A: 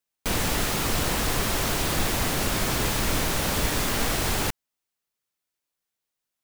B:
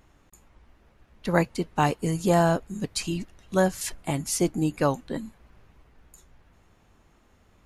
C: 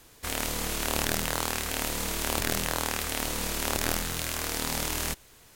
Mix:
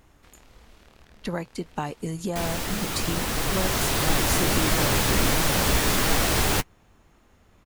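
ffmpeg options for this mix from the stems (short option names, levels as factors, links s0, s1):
-filter_complex "[0:a]dynaudnorm=f=330:g=9:m=2.66,flanger=delay=6.1:depth=9.9:regen=-27:speed=1.5:shape=sinusoidal,adelay=2100,volume=0.891[s0];[1:a]acompressor=threshold=0.0355:ratio=6,volume=1.26[s1];[2:a]acompressor=threshold=0.0178:ratio=6,acrossover=split=5500[s2][s3];[s3]acompressor=threshold=0.002:ratio=4:attack=1:release=60[s4];[s2][s4]amix=inputs=2:normalize=0,volume=0.15[s5];[s0][s1][s5]amix=inputs=3:normalize=0"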